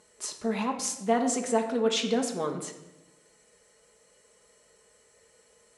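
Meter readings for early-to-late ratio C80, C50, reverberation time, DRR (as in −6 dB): 11.0 dB, 8.5 dB, 1.0 s, 2.0 dB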